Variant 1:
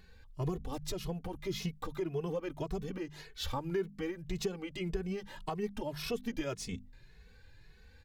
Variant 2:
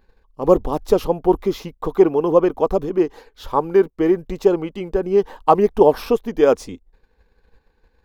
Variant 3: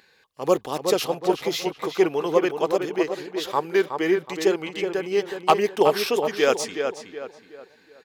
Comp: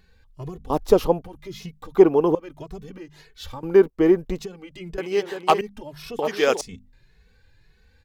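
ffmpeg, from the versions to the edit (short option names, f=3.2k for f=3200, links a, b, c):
-filter_complex "[1:a]asplit=3[a][b][c];[2:a]asplit=2[d][e];[0:a]asplit=6[f][g][h][i][j][k];[f]atrim=end=0.702[l];[a]atrim=start=0.698:end=1.222[m];[g]atrim=start=1.218:end=1.952[n];[b]atrim=start=1.948:end=2.352[o];[h]atrim=start=2.348:end=3.632[p];[c]atrim=start=3.628:end=4.392[q];[i]atrim=start=4.388:end=4.982[r];[d]atrim=start=4.978:end=5.612[s];[j]atrim=start=5.608:end=6.192[t];[e]atrim=start=6.188:end=6.612[u];[k]atrim=start=6.608[v];[l][m]acrossfade=d=0.004:c1=hsin:c2=hsin[w];[w][n]acrossfade=d=0.004:c1=hsin:c2=hsin[x];[x][o]acrossfade=d=0.004:c1=hsin:c2=hsin[y];[y][p]acrossfade=d=0.004:c1=hsin:c2=hsin[z];[z][q]acrossfade=d=0.004:c1=hsin:c2=hsin[aa];[aa][r]acrossfade=d=0.004:c1=hsin:c2=hsin[ab];[ab][s]acrossfade=d=0.004:c1=hsin:c2=hsin[ac];[ac][t]acrossfade=d=0.004:c1=hsin:c2=hsin[ad];[ad][u]acrossfade=d=0.004:c1=hsin:c2=hsin[ae];[ae][v]acrossfade=d=0.004:c1=hsin:c2=hsin"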